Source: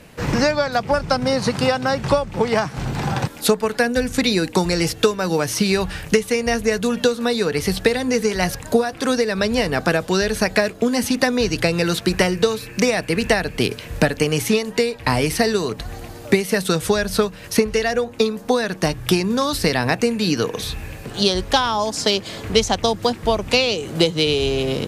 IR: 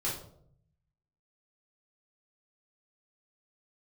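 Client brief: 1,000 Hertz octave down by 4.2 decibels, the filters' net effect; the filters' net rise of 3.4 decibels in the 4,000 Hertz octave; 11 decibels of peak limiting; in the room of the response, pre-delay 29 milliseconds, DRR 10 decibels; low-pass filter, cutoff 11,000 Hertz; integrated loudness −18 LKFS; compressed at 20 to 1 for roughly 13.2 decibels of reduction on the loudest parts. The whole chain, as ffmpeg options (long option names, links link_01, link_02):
-filter_complex "[0:a]lowpass=11000,equalizer=frequency=1000:width_type=o:gain=-6,equalizer=frequency=4000:width_type=o:gain=4.5,acompressor=threshold=-24dB:ratio=20,alimiter=limit=-18dB:level=0:latency=1,asplit=2[link_01][link_02];[1:a]atrim=start_sample=2205,adelay=29[link_03];[link_02][link_03]afir=irnorm=-1:irlink=0,volume=-15dB[link_04];[link_01][link_04]amix=inputs=2:normalize=0,volume=11.5dB"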